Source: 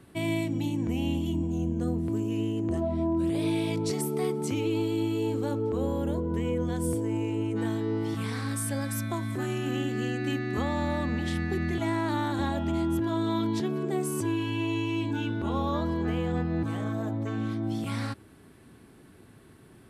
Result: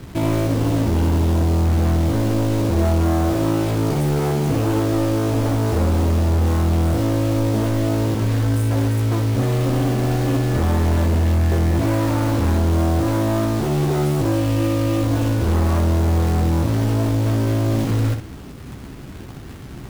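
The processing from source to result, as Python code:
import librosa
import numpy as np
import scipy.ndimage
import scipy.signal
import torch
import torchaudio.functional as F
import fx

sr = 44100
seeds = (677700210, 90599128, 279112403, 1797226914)

y = fx.tilt_eq(x, sr, slope=-4.0)
y = 10.0 ** (-24.0 / 20.0) * np.tanh(y / 10.0 ** (-24.0 / 20.0))
y = fx.quant_companded(y, sr, bits=4)
y = fx.room_early_taps(y, sr, ms=(15, 62), db=(-7.0, -7.0))
y = F.gain(torch.from_numpy(y), 6.5).numpy()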